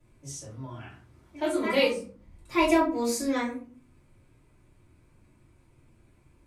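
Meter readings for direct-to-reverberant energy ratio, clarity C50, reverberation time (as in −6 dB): −11.0 dB, 7.0 dB, 0.45 s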